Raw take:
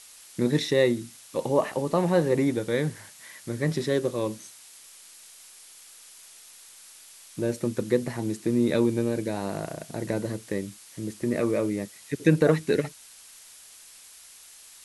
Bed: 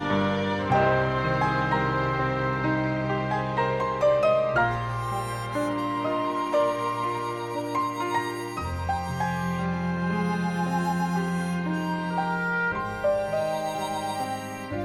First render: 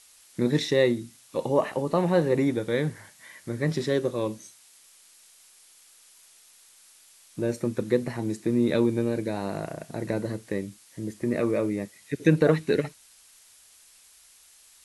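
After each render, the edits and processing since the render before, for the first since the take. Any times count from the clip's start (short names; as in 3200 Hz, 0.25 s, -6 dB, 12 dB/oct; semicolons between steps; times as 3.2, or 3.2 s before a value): noise print and reduce 6 dB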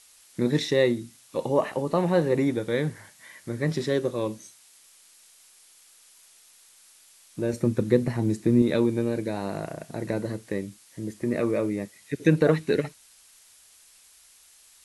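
7.53–8.62 low shelf 240 Hz +9 dB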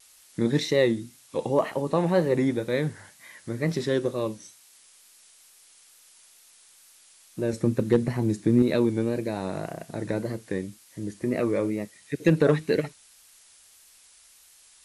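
wow and flutter 78 cents; hard clip -10 dBFS, distortion -29 dB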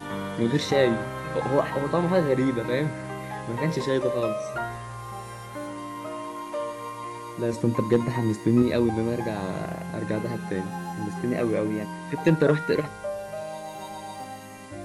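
add bed -8 dB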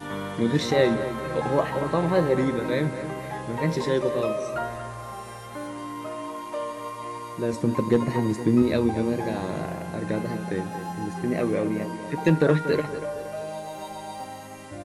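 doubler 13 ms -13.5 dB; tape echo 0.234 s, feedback 52%, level -10 dB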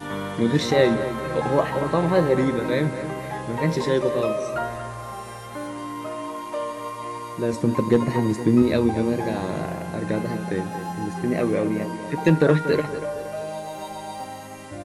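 gain +2.5 dB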